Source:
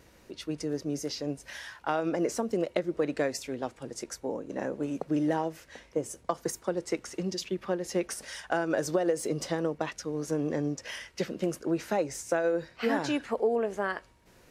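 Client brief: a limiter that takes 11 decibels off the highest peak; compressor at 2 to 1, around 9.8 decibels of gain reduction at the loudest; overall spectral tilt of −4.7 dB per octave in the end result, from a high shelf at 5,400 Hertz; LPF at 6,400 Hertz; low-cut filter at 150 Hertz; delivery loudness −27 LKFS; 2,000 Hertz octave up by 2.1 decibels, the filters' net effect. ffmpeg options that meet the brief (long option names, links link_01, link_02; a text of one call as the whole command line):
ffmpeg -i in.wav -af "highpass=150,lowpass=6400,equalizer=frequency=2000:width_type=o:gain=3.5,highshelf=frequency=5400:gain=-6.5,acompressor=threshold=-41dB:ratio=2,volume=15dB,alimiter=limit=-15dB:level=0:latency=1" out.wav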